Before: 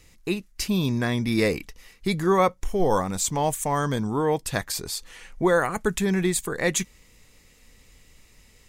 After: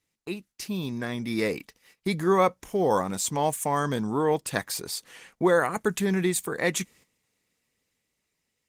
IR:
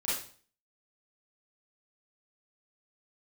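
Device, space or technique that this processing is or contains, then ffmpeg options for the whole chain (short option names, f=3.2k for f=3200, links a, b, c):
video call: -af "highpass=140,dynaudnorm=f=350:g=9:m=7dB,agate=range=-13dB:threshold=-46dB:ratio=16:detection=peak,volume=-6.5dB" -ar 48000 -c:a libopus -b:a 20k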